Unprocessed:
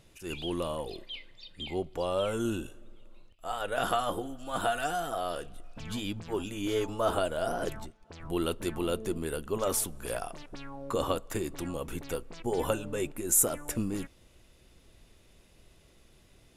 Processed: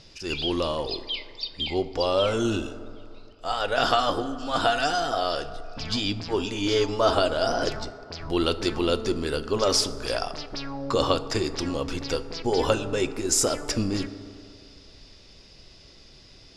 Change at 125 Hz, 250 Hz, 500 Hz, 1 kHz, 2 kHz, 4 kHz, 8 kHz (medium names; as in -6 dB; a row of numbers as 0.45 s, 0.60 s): +6.0 dB, +6.5 dB, +7.0 dB, +7.0 dB, +8.0 dB, +12.5 dB, +2.0 dB